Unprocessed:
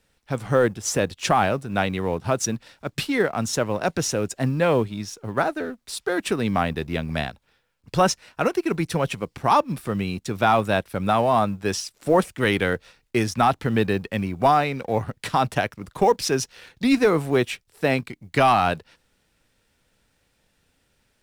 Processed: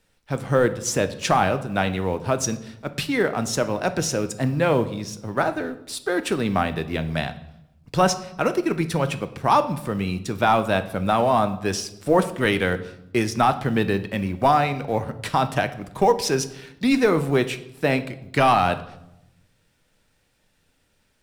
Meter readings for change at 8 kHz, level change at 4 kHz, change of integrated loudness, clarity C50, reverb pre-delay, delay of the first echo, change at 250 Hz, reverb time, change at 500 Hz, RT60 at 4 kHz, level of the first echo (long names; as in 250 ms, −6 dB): +0.5 dB, +0.5 dB, +0.5 dB, 14.5 dB, 3 ms, no echo audible, +0.5 dB, 0.85 s, +0.5 dB, 0.65 s, no echo audible